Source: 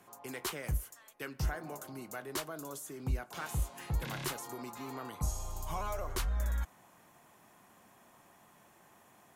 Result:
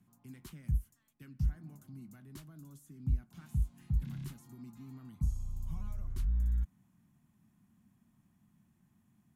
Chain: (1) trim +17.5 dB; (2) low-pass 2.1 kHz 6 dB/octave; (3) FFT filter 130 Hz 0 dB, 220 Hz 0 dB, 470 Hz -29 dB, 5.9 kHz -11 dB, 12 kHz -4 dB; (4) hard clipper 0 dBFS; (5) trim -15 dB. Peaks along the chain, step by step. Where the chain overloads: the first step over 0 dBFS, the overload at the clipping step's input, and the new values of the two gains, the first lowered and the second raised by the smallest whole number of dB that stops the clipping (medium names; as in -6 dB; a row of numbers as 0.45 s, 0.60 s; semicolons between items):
-5.5 dBFS, -6.5 dBFS, -6.0 dBFS, -6.0 dBFS, -21.0 dBFS; nothing clips